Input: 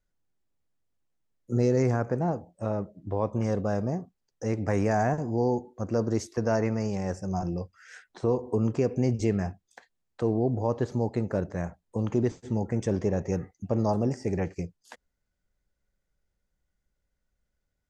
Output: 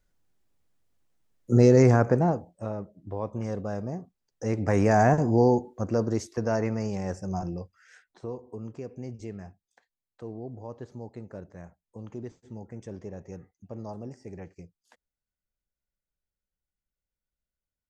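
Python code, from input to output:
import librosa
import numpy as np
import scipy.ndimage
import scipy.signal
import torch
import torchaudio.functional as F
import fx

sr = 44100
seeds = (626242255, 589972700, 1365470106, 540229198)

y = fx.gain(x, sr, db=fx.line((2.11, 6.5), (2.75, -4.5), (3.89, -4.5), (5.24, 7.0), (6.22, -1.0), (7.34, -1.0), (8.53, -13.0)))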